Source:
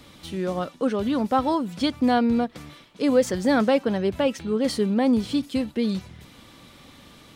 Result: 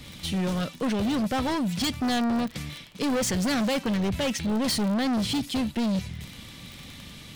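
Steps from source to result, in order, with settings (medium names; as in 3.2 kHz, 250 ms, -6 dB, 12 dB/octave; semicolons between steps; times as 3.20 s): high-order bell 630 Hz -9 dB 2.8 oct; hard clipper -31.5 dBFS, distortion -7 dB; crackle 29 per s -37 dBFS; tape noise reduction on one side only decoder only; trim +8 dB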